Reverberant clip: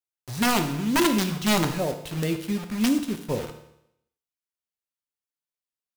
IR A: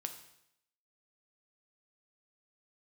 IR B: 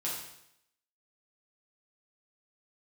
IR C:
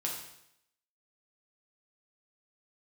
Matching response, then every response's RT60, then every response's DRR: A; 0.75, 0.75, 0.75 s; 6.0, -6.5, -2.5 dB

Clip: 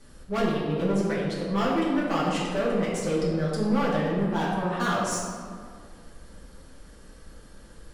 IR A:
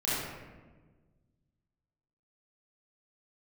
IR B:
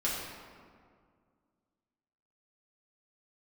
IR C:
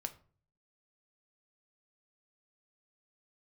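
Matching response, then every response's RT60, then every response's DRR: B; 1.4, 2.0, 0.45 s; -10.0, -7.5, 7.0 dB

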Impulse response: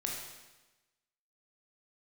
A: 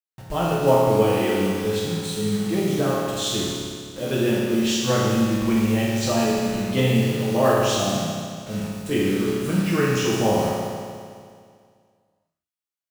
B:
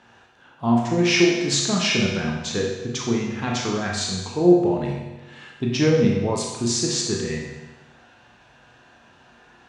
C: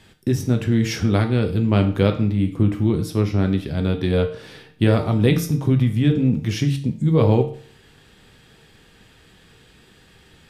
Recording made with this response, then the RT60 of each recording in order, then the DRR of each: B; 2.1, 1.1, 0.50 s; -7.0, -1.5, 4.5 dB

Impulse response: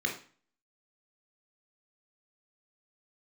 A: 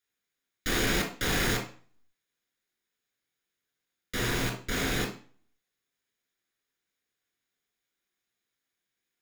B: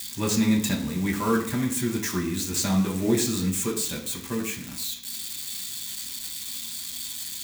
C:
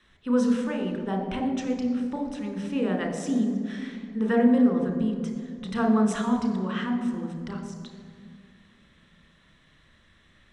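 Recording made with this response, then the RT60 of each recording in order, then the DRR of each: A; 0.40, 0.65, 2.2 s; 2.0, -2.0, 3.5 dB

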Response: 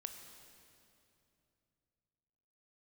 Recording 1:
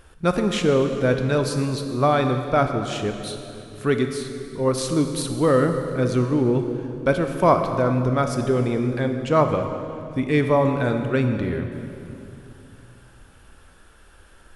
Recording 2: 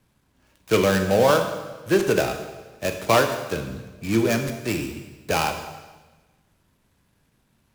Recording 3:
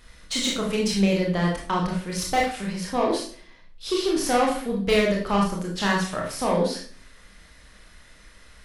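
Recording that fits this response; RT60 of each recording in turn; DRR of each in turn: 1; 2.8, 1.2, 0.45 s; 5.5, 5.5, -2.0 dB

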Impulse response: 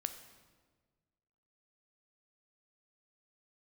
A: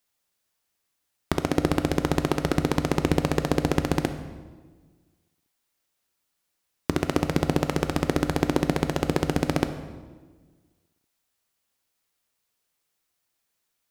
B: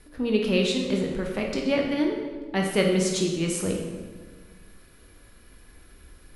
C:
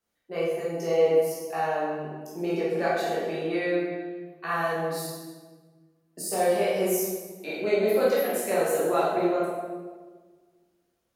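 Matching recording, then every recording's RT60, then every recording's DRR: A; 1.5, 1.4, 1.4 s; 8.5, 0.5, -8.5 dB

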